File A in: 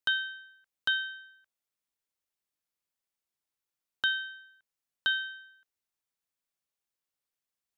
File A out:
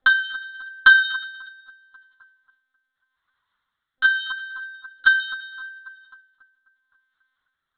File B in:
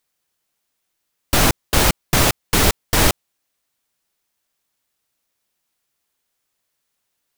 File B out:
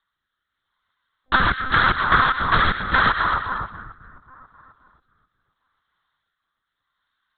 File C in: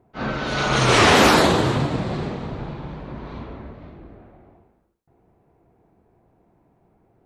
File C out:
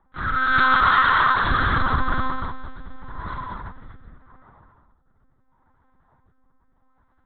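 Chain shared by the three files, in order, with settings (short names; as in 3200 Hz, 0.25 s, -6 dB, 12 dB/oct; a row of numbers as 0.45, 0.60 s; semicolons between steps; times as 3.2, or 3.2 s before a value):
fixed phaser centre 510 Hz, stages 8; notch comb 220 Hz; dynamic EQ 1400 Hz, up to +6 dB, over -38 dBFS, Q 1.5; HPF 43 Hz 24 dB/oct; FFT band-reject 210–650 Hz; low shelf 220 Hz -8.5 dB; split-band echo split 1400 Hz, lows 0.268 s, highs 0.118 s, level -11.5 dB; rotary speaker horn 0.8 Hz; monotone LPC vocoder at 8 kHz 260 Hz; compressor 16:1, threshold -28 dBFS; match loudness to -19 LUFS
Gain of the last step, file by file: +28.0, +15.5, +15.0 dB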